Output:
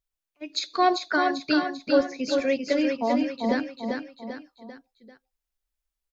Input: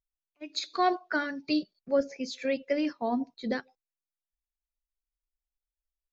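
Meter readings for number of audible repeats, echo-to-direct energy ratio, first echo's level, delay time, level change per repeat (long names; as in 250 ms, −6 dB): 4, −3.5 dB, −4.5 dB, 393 ms, −6.5 dB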